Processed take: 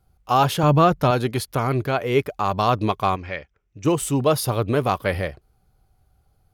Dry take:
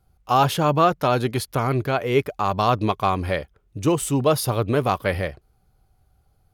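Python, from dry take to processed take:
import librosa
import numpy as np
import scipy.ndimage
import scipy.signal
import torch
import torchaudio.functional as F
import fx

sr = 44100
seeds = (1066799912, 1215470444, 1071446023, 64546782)

y = fx.low_shelf(x, sr, hz=180.0, db=11.5, at=(0.63, 1.11))
y = fx.cheby_ripple(y, sr, hz=7800.0, ripple_db=9, at=(3.15, 3.84), fade=0.02)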